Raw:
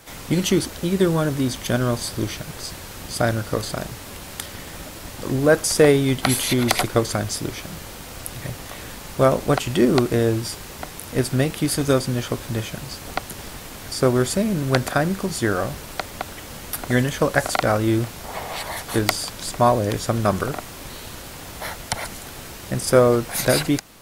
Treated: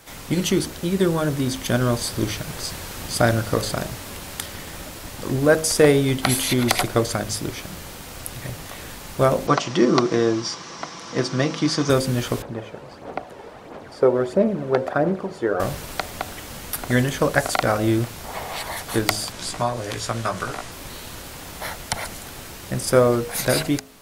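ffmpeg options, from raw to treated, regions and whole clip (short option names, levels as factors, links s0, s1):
-filter_complex "[0:a]asettb=1/sr,asplit=3[s0][s1][s2];[s0]atrim=end=9.474[s3];[s1]atrim=start=9.47:end=11.9,asetpts=PTS-STARTPTS,afade=t=in:d=0.004:c=qsin,afade=t=out:st=2.426:d=0.004:c=qsin,highpass=160,equalizer=f=250:t=q:w=4:g=3,equalizer=f=1100:t=q:w=4:g=9,equalizer=f=5700:t=q:w=4:g=9,lowpass=f=6200:w=0.5412,lowpass=f=6200:w=1.3066,bandreject=f=2600:w=21,aecho=1:1:6:0.4,atrim=end_sample=107163[s4];[s2]atrim=start=11.896[s5];[s3][s4]acrossfade=d=0.004:c1=hsin:c2=qsin[s6];[s6][s5]acrossfade=d=0.004:c1=qsin:c2=hsin,asettb=1/sr,asplit=3[s7][s8][s9];[s7]atrim=end=12.424[s10];[s8]atrim=start=12.42:end=15.6,asetpts=PTS-STARTPTS,afade=t=in:d=0.004:c=qsin,afade=t=out:st=3.176:d=0.004:c=qsin,bandpass=f=540:t=q:w=1,aphaser=in_gain=1:out_gain=1:delay=2.3:decay=0.44:speed=1.5:type=sinusoidal[s11];[s9]atrim=start=15.596[s12];[s10][s11]acrossfade=d=0.004:c1=hsin:c2=qsin[s13];[s13][s12]acrossfade=d=0.004:c1=qsin:c2=hsin,asettb=1/sr,asplit=3[s14][s15][s16];[s14]atrim=end=19.324[s17];[s15]atrim=start=19.32:end=20.72,asetpts=PTS-STARTPTS,afade=t=in:d=0.004:c=qsin,afade=t=out:st=1.396:d=0.004:c=qsin,lowpass=9700,acrossover=split=95|710[s18][s19][s20];[s18]acompressor=threshold=0.0112:ratio=4[s21];[s19]acompressor=threshold=0.0251:ratio=4[s22];[s20]acompressor=threshold=0.0794:ratio=4[s23];[s21][s22][s23]amix=inputs=3:normalize=0,asplit=2[s24][s25];[s25]adelay=17,volume=0.631[s26];[s24][s26]amix=inputs=2:normalize=0,atrim=end_sample=61740[s27];[s16]atrim=start=20.716[s28];[s17][s27]acrossfade=d=0.004:c1=hsin:c2=qsin[s29];[s29][s28]acrossfade=d=0.004:c1=qsin:c2=hsin,dynaudnorm=f=360:g=11:m=2,bandreject=f=52.92:t=h:w=4,bandreject=f=105.84:t=h:w=4,bandreject=f=158.76:t=h:w=4,bandreject=f=211.68:t=h:w=4,bandreject=f=264.6:t=h:w=4,bandreject=f=317.52:t=h:w=4,bandreject=f=370.44:t=h:w=4,bandreject=f=423.36:t=h:w=4,bandreject=f=476.28:t=h:w=4,bandreject=f=529.2:t=h:w=4,bandreject=f=582.12:t=h:w=4,bandreject=f=635.04:t=h:w=4,bandreject=f=687.96:t=h:w=4,bandreject=f=740.88:t=h:w=4,volume=0.891"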